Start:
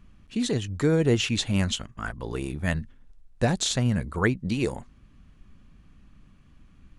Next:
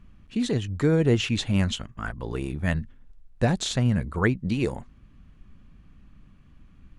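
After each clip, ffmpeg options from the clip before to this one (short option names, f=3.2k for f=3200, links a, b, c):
-af "bass=f=250:g=2,treble=f=4k:g=-5"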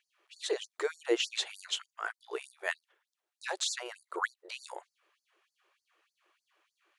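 -af "afftfilt=real='re*gte(b*sr/1024,310*pow(4400/310,0.5+0.5*sin(2*PI*3.3*pts/sr)))':imag='im*gte(b*sr/1024,310*pow(4400/310,0.5+0.5*sin(2*PI*3.3*pts/sr)))':win_size=1024:overlap=0.75,volume=-2dB"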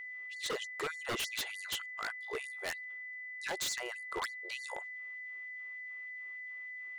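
-af "aeval=exprs='val(0)+0.00794*sin(2*PI*2000*n/s)':c=same,aeval=exprs='0.0335*(abs(mod(val(0)/0.0335+3,4)-2)-1)':c=same"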